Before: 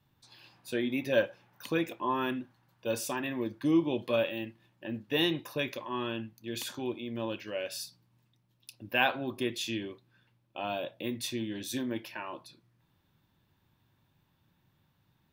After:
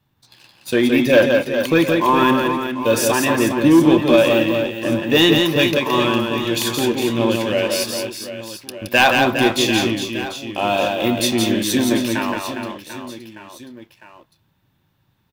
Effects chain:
leveller curve on the samples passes 2
reverse bouncing-ball delay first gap 170 ms, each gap 1.4×, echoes 5
level +8 dB

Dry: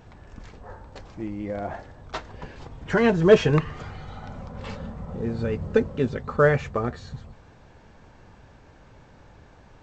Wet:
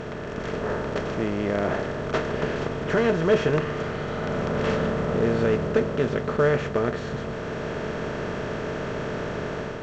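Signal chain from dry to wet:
compressor on every frequency bin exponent 0.4
automatic gain control gain up to 5 dB
level −8 dB

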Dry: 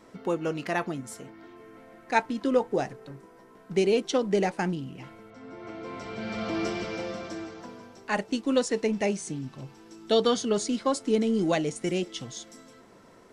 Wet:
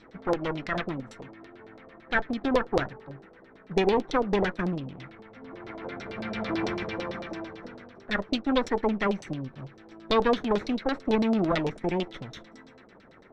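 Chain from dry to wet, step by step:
lower of the sound and its delayed copy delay 0.53 ms
auto-filter low-pass saw down 9 Hz 500–4,800 Hz

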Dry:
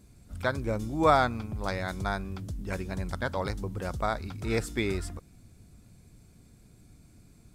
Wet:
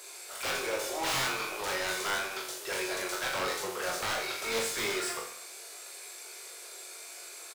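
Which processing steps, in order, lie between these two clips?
Chebyshev high-pass filter 360 Hz, order 6
spectral tilt +2 dB per octave
wrap-around overflow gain 24 dB
mid-hump overdrive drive 29 dB, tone 6,600 Hz, clips at −24 dBFS
double-tracking delay 22 ms −5 dB
on a send: reverse bouncing-ball delay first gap 40 ms, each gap 1.1×, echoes 5
on the sum: level −5 dB

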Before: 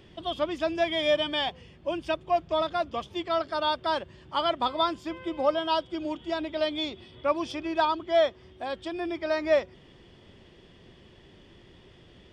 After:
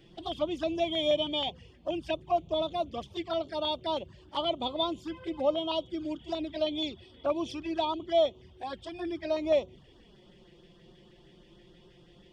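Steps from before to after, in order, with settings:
flanger swept by the level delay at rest 7 ms, full sweep at −26 dBFS
auto-filter notch saw up 6.3 Hz 920–2,600 Hz

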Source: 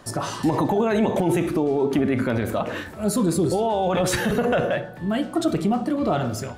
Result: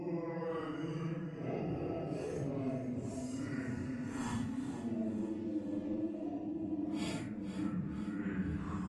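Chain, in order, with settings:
high-pass filter 92 Hz 6 dB per octave
notch filter 2,100 Hz, Q 19
hum removal 396.5 Hz, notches 27
brickwall limiter −21.5 dBFS, peak gain reduction 10 dB
compressor whose output falls as the input rises −34 dBFS, ratio −0.5
soft clipping −27 dBFS, distortion −15 dB
extreme stretch with random phases 4.7×, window 0.05 s, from 0:00.82
repeating echo 355 ms, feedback 51%, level −12 dB
wrong playback speed 45 rpm record played at 33 rpm
AAC 48 kbit/s 48,000 Hz

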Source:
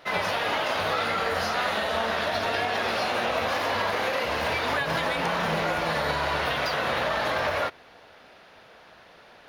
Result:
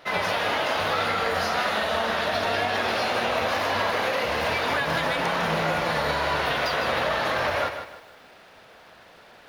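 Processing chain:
feedback echo at a low word length 154 ms, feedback 35%, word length 9 bits, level −8.5 dB
level +1 dB

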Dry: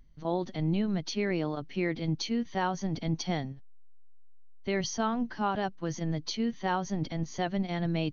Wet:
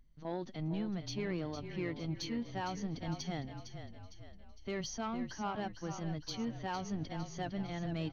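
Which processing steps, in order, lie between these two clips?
soft clipping −21.5 dBFS, distortion −18 dB
echo with shifted repeats 457 ms, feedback 48%, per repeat −32 Hz, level −9 dB
level −7 dB

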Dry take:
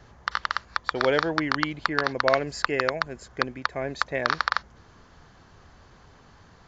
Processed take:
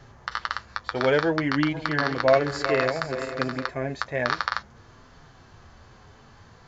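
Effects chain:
0:01.28–0:03.70: feedback delay that plays each chunk backwards 247 ms, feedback 59%, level −10 dB
harmonic and percussive parts rebalanced harmonic +9 dB
flanger 0.58 Hz, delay 7.4 ms, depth 2.2 ms, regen −45%

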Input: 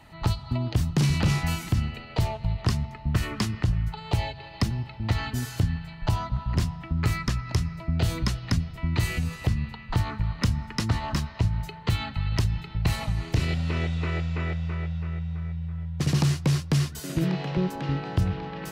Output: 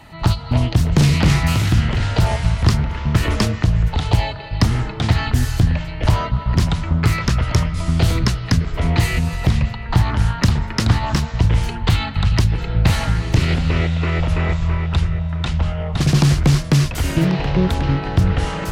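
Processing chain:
delay with pitch and tempo change per echo 190 ms, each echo −6 semitones, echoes 2, each echo −6 dB
highs frequency-modulated by the lows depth 0.34 ms
level +8.5 dB

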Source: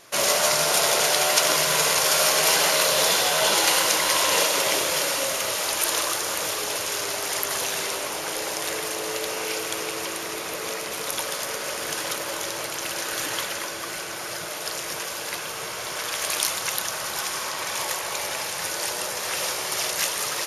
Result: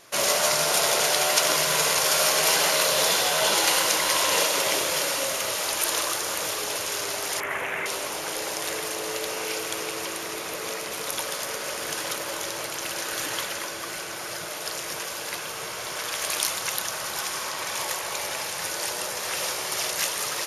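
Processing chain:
0:07.40–0:07.86: high shelf with overshoot 3,100 Hz −13 dB, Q 3
level −1.5 dB

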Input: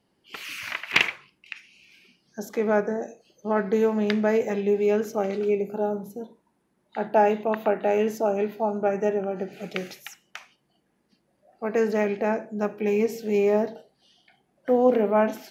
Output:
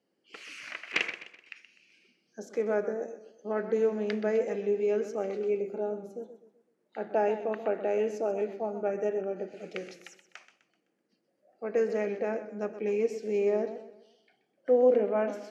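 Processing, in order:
loudspeaker in its box 200–8,900 Hz, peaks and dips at 320 Hz +4 dB, 500 Hz +7 dB, 950 Hz −7 dB, 3,600 Hz −5 dB
feedback echo with a swinging delay time 127 ms, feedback 40%, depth 93 cents, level −12.5 dB
level −8 dB

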